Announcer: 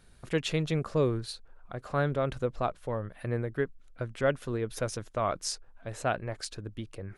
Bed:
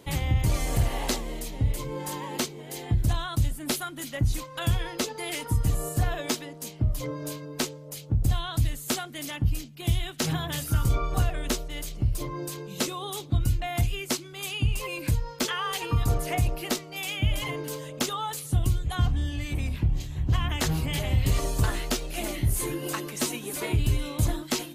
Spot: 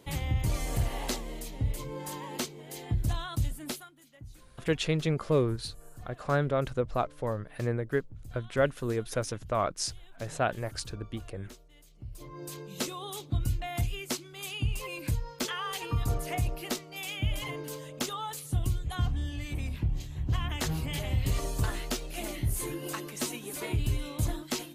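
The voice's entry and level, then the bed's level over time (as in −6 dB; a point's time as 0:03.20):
4.35 s, +1.0 dB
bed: 0:03.64 −5 dB
0:04.00 −23 dB
0:11.89 −23 dB
0:12.53 −5 dB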